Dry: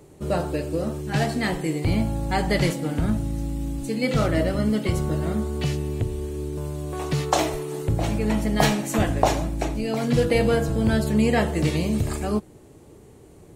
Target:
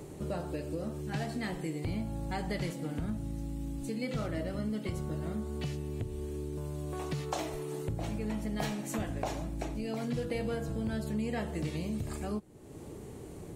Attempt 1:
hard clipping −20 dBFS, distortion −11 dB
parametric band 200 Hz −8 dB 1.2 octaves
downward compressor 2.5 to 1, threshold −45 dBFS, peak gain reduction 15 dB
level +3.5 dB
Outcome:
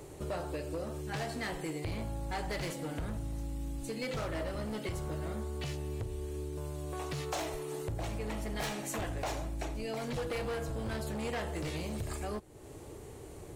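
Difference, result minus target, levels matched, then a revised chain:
hard clipping: distortion +17 dB; 250 Hz band −4.0 dB
hard clipping −10 dBFS, distortion −27 dB
parametric band 200 Hz +2.5 dB 1.2 octaves
downward compressor 2.5 to 1, threshold −45 dBFS, peak gain reduction 20 dB
level +3.5 dB

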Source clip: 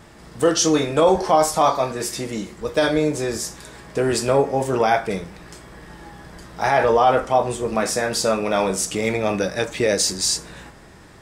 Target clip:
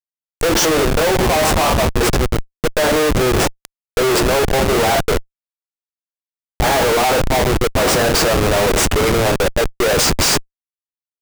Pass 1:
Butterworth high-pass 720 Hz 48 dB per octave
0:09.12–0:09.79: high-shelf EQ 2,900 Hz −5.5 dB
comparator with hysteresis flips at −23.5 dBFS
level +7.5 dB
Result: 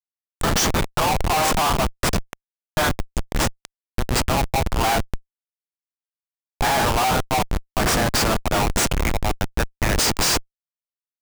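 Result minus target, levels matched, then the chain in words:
1,000 Hz band +2.5 dB
Butterworth high-pass 330 Hz 48 dB per octave
0:09.12–0:09.79: high-shelf EQ 2,900 Hz −5.5 dB
comparator with hysteresis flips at −23.5 dBFS
level +7.5 dB

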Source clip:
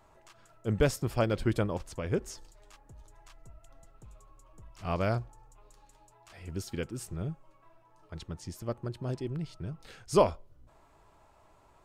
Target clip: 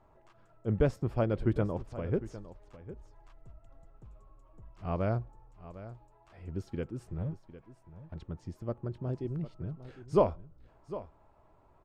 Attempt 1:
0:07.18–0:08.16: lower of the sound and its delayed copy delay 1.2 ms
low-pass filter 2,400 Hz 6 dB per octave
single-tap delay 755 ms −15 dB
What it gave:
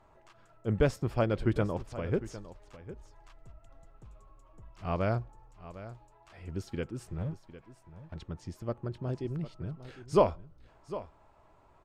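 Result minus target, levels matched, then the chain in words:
2,000 Hz band +4.5 dB
0:07.18–0:08.16: lower of the sound and its delayed copy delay 1.2 ms
low-pass filter 830 Hz 6 dB per octave
single-tap delay 755 ms −15 dB

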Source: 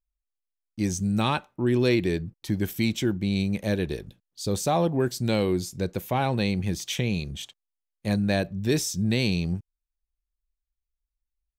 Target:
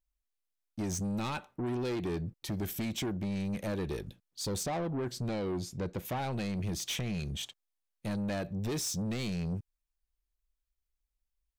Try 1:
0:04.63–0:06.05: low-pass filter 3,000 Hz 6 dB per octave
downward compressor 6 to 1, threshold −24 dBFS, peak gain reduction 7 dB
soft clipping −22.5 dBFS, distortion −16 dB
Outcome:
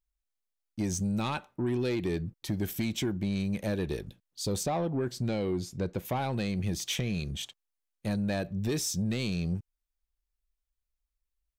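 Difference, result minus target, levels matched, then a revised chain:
soft clipping: distortion −7 dB
0:04.63–0:06.05: low-pass filter 3,000 Hz 6 dB per octave
downward compressor 6 to 1, threshold −24 dBFS, peak gain reduction 7 dB
soft clipping −30 dBFS, distortion −9 dB

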